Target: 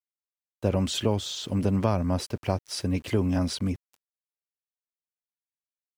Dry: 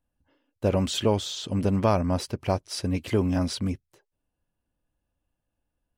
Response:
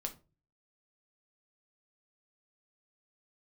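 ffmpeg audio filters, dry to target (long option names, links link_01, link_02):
-filter_complex "[0:a]acrossover=split=240[link_01][link_02];[link_02]acompressor=threshold=-26dB:ratio=2[link_03];[link_01][link_03]amix=inputs=2:normalize=0,aeval=exprs='val(0)*gte(abs(val(0)),0.00355)':channel_layout=same"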